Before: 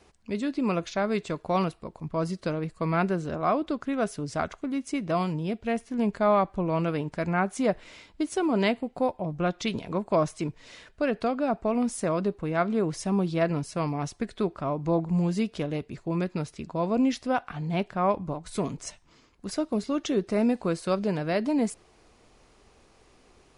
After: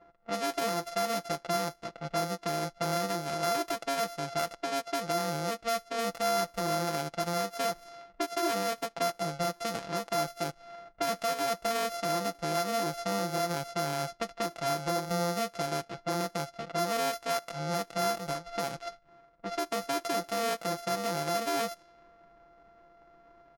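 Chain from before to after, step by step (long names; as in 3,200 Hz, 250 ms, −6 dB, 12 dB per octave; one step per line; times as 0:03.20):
samples sorted by size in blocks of 64 samples
low-shelf EQ 250 Hz −12 dB
comb filter 6 ms, depth 66%
in parallel at −1 dB: downward compressor, threshold −38 dBFS, peak gain reduction 19.5 dB
on the sum: low-pass that shuts in the quiet parts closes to 1,500 Hz, open at −23 dBFS
brickwall limiter −15 dBFS, peak gain reduction 7.5 dB
level −3.5 dB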